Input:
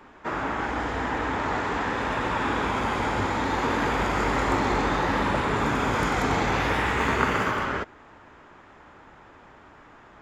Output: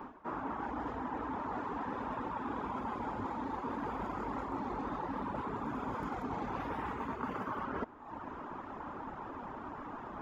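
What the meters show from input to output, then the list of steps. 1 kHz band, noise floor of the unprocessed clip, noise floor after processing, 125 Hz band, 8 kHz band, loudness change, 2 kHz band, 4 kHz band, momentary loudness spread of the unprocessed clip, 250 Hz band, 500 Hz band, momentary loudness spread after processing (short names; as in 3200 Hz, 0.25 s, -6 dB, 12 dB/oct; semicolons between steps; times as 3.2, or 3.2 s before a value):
-11.5 dB, -51 dBFS, -46 dBFS, -15.5 dB, under -25 dB, -14.0 dB, -19.5 dB, -24.0 dB, 5 LU, -10.5 dB, -13.5 dB, 6 LU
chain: reverb removal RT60 0.69 s; graphic EQ 250/1000/2000/4000/8000 Hz +8/+8/-6/-5/-10 dB; reverse; compressor 10:1, threshold -40 dBFS, peak gain reduction 24.5 dB; reverse; gain +4 dB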